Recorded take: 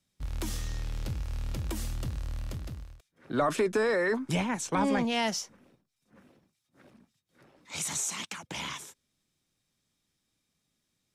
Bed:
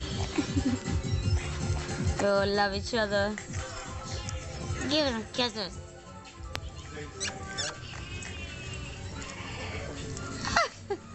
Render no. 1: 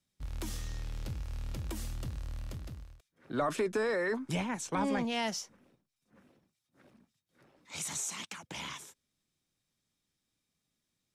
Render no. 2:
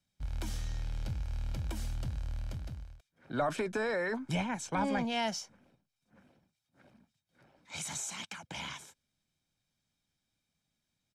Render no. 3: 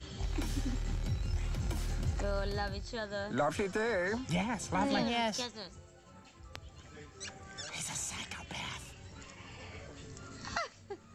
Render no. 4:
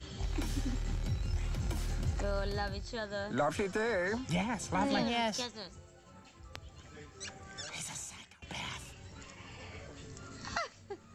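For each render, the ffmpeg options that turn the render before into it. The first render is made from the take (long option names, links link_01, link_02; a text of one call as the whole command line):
ffmpeg -i in.wav -af "volume=-4.5dB" out.wav
ffmpeg -i in.wav -af "highshelf=frequency=9500:gain=-9,aecho=1:1:1.3:0.38" out.wav
ffmpeg -i in.wav -i bed.wav -filter_complex "[1:a]volume=-11dB[link_01];[0:a][link_01]amix=inputs=2:normalize=0" out.wav
ffmpeg -i in.wav -filter_complex "[0:a]asplit=2[link_01][link_02];[link_01]atrim=end=8.42,asetpts=PTS-STARTPTS,afade=type=out:start_time=7.66:duration=0.76:silence=0.0749894[link_03];[link_02]atrim=start=8.42,asetpts=PTS-STARTPTS,afade=type=in:duration=0.004:curve=hsin:silence=0.0749894[link_04];[link_03][link_04]concat=n=2:v=0:a=1" out.wav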